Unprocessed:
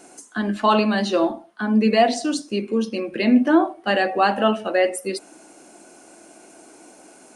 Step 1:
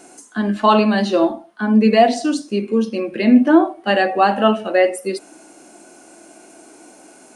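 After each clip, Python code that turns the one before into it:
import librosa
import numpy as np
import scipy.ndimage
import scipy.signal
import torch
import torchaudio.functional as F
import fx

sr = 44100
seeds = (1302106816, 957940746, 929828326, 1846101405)

y = fx.hpss(x, sr, part='harmonic', gain_db=6)
y = y * librosa.db_to_amplitude(-1.5)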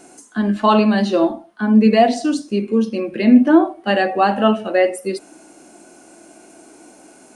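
y = fx.low_shelf(x, sr, hz=200.0, db=6.5)
y = y * librosa.db_to_amplitude(-1.5)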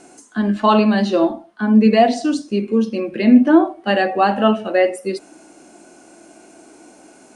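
y = scipy.signal.sosfilt(scipy.signal.butter(2, 8900.0, 'lowpass', fs=sr, output='sos'), x)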